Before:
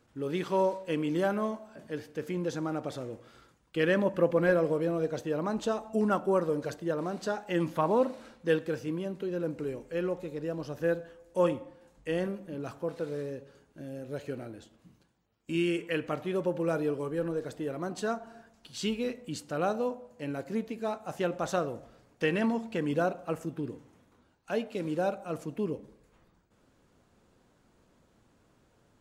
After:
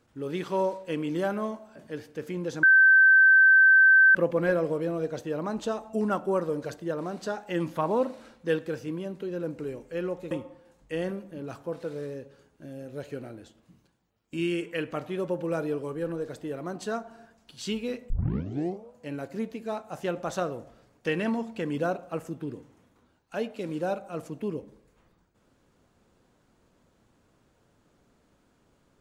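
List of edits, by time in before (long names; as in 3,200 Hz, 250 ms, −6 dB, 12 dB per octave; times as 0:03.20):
0:02.63–0:04.15: beep over 1,550 Hz −13.5 dBFS
0:10.31–0:11.47: remove
0:19.26: tape start 0.81 s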